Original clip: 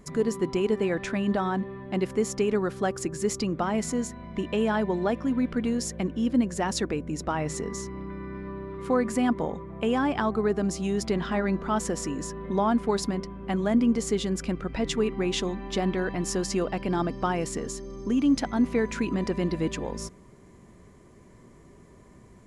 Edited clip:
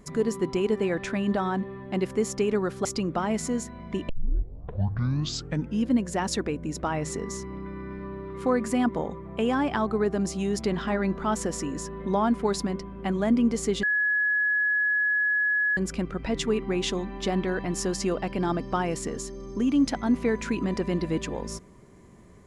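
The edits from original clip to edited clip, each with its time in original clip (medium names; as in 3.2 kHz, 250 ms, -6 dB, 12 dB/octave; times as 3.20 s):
2.85–3.29 s: delete
4.53 s: tape start 1.79 s
14.27 s: add tone 1.69 kHz -21 dBFS 1.94 s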